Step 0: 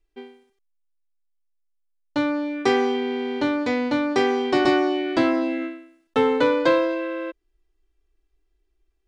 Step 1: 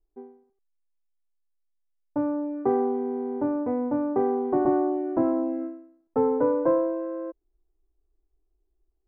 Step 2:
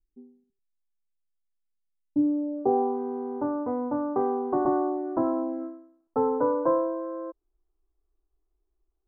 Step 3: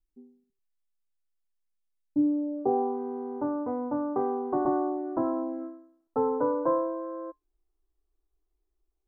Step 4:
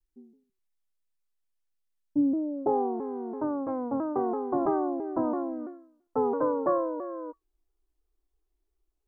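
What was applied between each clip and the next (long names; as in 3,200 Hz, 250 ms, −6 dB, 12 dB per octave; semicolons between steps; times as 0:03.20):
low-pass filter 1,000 Hz 24 dB per octave; level −3 dB
low-pass filter sweep 200 Hz → 1,200 Hz, 0:01.98–0:03.00; level −3.5 dB
tuned comb filter 150 Hz, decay 0.16 s, harmonics all, mix 30%
pitch modulation by a square or saw wave saw down 3 Hz, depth 160 cents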